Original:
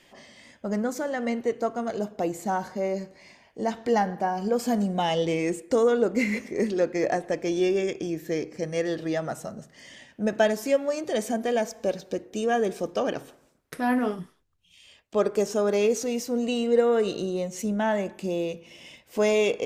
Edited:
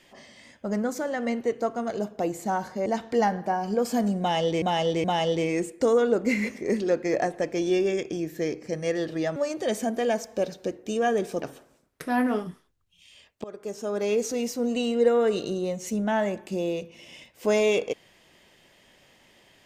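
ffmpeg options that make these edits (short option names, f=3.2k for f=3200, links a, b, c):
-filter_complex "[0:a]asplit=7[a][b][c][d][e][f][g];[a]atrim=end=2.862[h];[b]atrim=start=3.598:end=5.362[i];[c]atrim=start=4.938:end=5.362[j];[d]atrim=start=4.938:end=9.262[k];[e]atrim=start=10.828:end=12.892[l];[f]atrim=start=13.138:end=15.16,asetpts=PTS-STARTPTS,afade=t=out:st=2.018:d=0.004:c=hsin:silence=0.0749894[m];[g]atrim=start=15.16,asetpts=PTS-STARTPTS,afade=t=in:d=0.93:silence=0.0749894[n];[h][i]acrossfade=d=0.004:c1=hsin:c2=hsin[o];[o][j]acrossfade=d=0.004:c1=hsin:c2=hsin[p];[p][k]acrossfade=d=0.004:c1=hsin:c2=hsin[q];[q][l]acrossfade=d=0.004:c1=hsin:c2=hsin[r];[m][n]concat=n=2:v=0:a=1[s];[r][s]acrossfade=d=0.004:c1=hsin:c2=hsin"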